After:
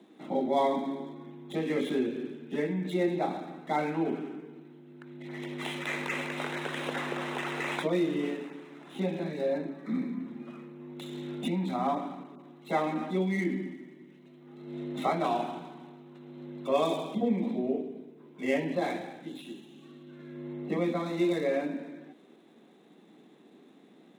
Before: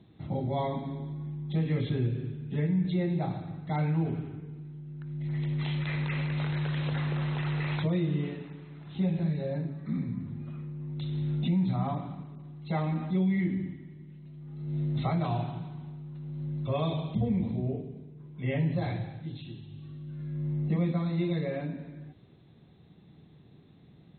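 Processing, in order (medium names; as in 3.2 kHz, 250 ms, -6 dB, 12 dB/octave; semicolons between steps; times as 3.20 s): median filter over 9 samples; steep high-pass 230 Hz 36 dB/octave; trim +6 dB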